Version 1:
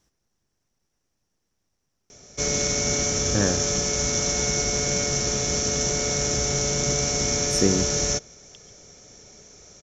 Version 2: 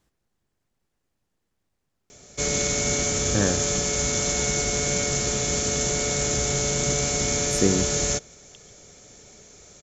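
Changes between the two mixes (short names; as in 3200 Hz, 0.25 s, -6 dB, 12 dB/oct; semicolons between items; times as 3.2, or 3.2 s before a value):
background: add high shelf 5100 Hz +11 dB; master: add bell 5700 Hz -14 dB 0.28 oct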